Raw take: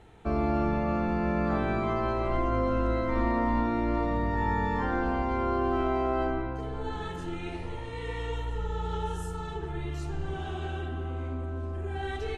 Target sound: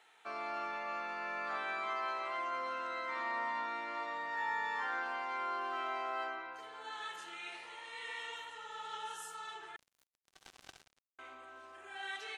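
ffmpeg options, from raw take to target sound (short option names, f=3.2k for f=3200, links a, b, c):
-filter_complex "[0:a]highpass=1.3k,asettb=1/sr,asplit=3[a][b][c];[a]atrim=end=9.764[d];[b]atrim=start=9.76:end=11.19,asetpts=PTS-STARTPTS,afade=t=in:d=0.004:c=qsin,afade=t=out:st=1.426:d=0.004:c=qsin,acrusher=bits=5:mix=0:aa=0.5[e];[c]atrim=start=11.186[f];[d][e]acrossfade=d=0.004:c1=hsin:c2=qsin[g];[g][f]acrossfade=d=0.004:c1=qsin:c2=hsin"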